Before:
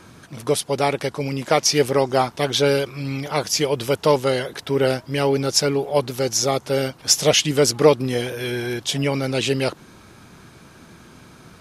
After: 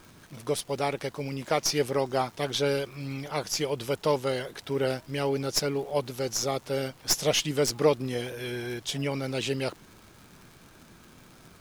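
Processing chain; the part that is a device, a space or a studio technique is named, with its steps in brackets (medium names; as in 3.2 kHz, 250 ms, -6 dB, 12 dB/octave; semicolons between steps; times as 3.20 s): record under a worn stylus (tracing distortion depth 0.027 ms; crackle 120 per s -32 dBFS; pink noise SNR 30 dB); trim -8.5 dB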